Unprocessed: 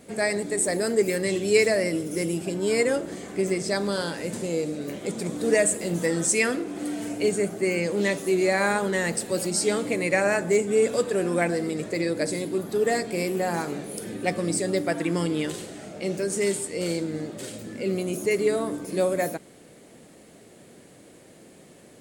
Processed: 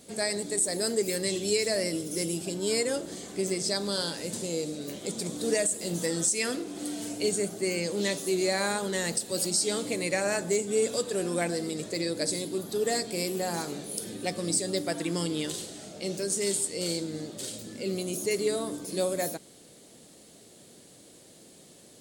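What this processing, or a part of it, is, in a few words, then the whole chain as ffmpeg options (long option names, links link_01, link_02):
over-bright horn tweeter: -af "highshelf=frequency=2900:width_type=q:width=1.5:gain=7.5,alimiter=limit=-10dB:level=0:latency=1:release=206,volume=-5dB"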